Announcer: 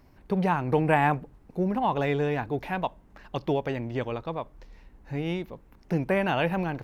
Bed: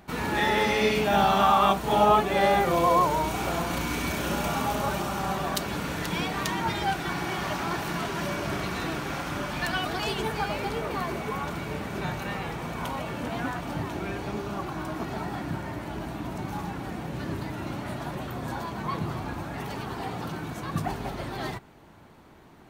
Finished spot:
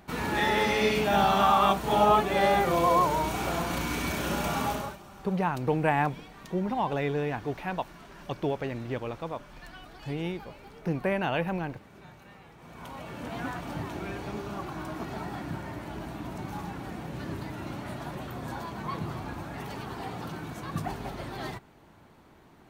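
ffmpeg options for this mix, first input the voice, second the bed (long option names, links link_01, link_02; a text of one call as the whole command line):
ffmpeg -i stem1.wav -i stem2.wav -filter_complex "[0:a]adelay=4950,volume=-3dB[link_01];[1:a]volume=14dB,afade=type=out:start_time=4.68:duration=0.29:silence=0.133352,afade=type=in:start_time=12.56:duration=0.92:silence=0.16788[link_02];[link_01][link_02]amix=inputs=2:normalize=0" out.wav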